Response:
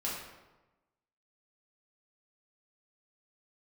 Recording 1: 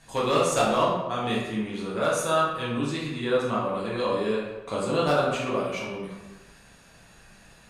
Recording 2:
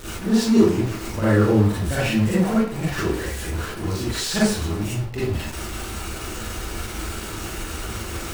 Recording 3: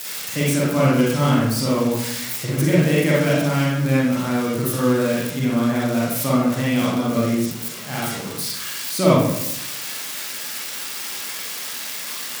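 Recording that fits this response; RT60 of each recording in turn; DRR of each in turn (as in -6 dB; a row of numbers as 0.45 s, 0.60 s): 1; 1.1 s, 0.55 s, 0.85 s; -6.5 dB, -9.0 dB, -7.0 dB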